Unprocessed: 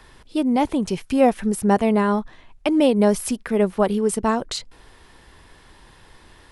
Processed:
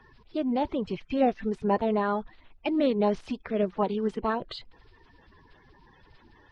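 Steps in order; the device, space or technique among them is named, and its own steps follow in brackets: clip after many re-uploads (LPF 4200 Hz 24 dB/oct; bin magnitudes rounded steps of 30 dB); gain -7 dB

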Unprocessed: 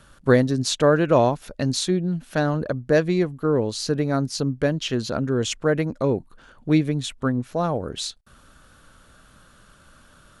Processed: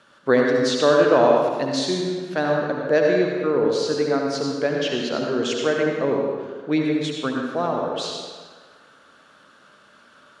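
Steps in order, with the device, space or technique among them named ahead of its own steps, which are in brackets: supermarket ceiling speaker (BPF 290–5200 Hz; reverb RT60 1.6 s, pre-delay 62 ms, DRR -0.5 dB)

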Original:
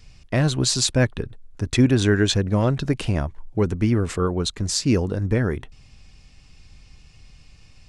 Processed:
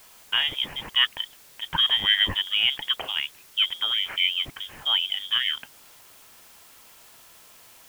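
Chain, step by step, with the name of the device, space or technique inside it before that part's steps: scrambled radio voice (BPF 390–2700 Hz; inverted band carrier 3500 Hz; white noise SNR 24 dB); gain +2.5 dB

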